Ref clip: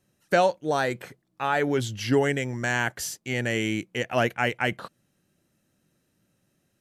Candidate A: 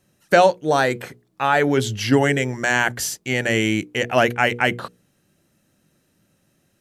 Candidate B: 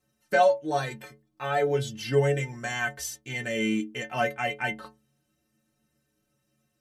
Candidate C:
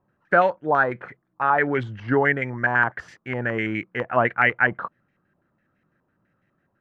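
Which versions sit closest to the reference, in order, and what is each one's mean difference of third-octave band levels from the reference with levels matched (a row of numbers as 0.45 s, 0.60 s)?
A, B, C; 1.0 dB, 4.0 dB, 7.5 dB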